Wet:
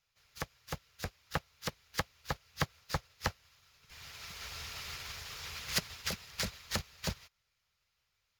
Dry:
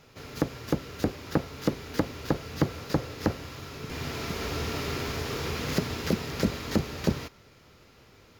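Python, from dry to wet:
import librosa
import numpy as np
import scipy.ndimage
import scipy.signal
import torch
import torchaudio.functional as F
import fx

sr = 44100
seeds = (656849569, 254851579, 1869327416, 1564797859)

y = fx.self_delay(x, sr, depth_ms=0.077)
y = fx.tone_stack(y, sr, knobs='10-0-10')
y = fx.hpss(y, sr, part='harmonic', gain_db=-6)
y = fx.upward_expand(y, sr, threshold_db=-52.0, expansion=2.5)
y = y * librosa.db_to_amplitude(9.0)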